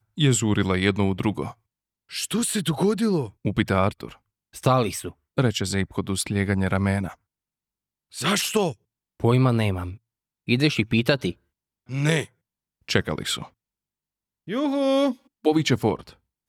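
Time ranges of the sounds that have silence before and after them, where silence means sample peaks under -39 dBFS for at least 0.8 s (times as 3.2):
8.14–13.47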